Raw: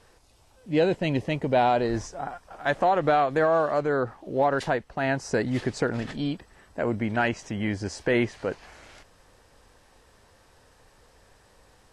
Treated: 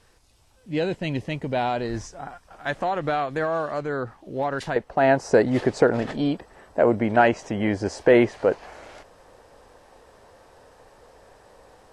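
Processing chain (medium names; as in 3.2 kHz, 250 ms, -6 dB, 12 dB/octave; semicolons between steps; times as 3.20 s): peaking EQ 600 Hz -4 dB 2.2 oct, from 4.76 s +10.5 dB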